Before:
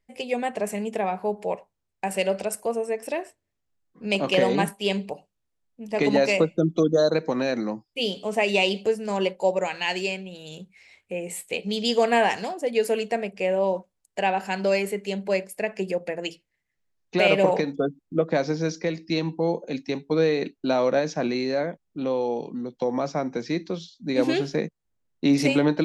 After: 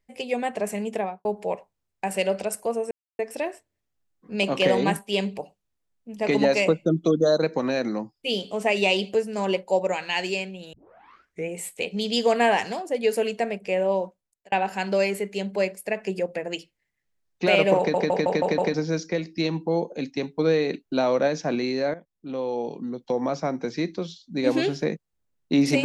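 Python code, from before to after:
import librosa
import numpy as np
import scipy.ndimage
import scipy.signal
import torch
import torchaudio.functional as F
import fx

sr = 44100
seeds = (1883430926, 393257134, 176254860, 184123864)

y = fx.studio_fade_out(x, sr, start_s=0.96, length_s=0.29)
y = fx.edit(y, sr, fx.insert_silence(at_s=2.91, length_s=0.28),
    fx.tape_start(start_s=10.45, length_s=0.76),
    fx.fade_out_span(start_s=13.63, length_s=0.61),
    fx.stutter_over(start_s=17.5, slice_s=0.16, count=6),
    fx.fade_in_from(start_s=21.66, length_s=0.84, floor_db=-12.5), tone=tone)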